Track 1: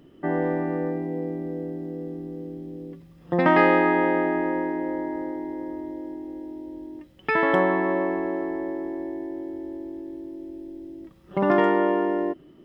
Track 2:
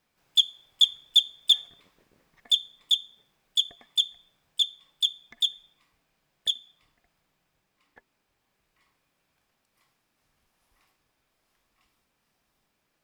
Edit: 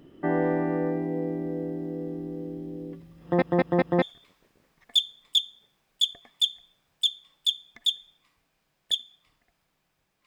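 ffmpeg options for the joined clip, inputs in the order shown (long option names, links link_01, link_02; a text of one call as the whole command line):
ffmpeg -i cue0.wav -i cue1.wav -filter_complex "[0:a]apad=whole_dur=10.26,atrim=end=10.26,asplit=4[link_01][link_02][link_03][link_04];[link_01]atrim=end=3.422[link_05];[link_02]atrim=start=3.218:end=3.422[link_06];[link_03]atrim=start=3.218:end=3.422[link_07];[link_04]atrim=start=3.218:end=3.422[link_08];[1:a]atrim=start=1.578:end=7.82[link_09];[link_05][link_06]acrossfade=duration=0.004:curve1=hsin:curve2=hsin[link_10];[link_10][link_07]acrossfade=duration=0.004:curve1=hsin:curve2=hsin[link_11];[link_11][link_08]acrossfade=duration=0.004:curve1=hsin:curve2=hsin[link_12];[link_12][link_09]acrossfade=duration=0.004:curve1=hsin:curve2=hsin" out.wav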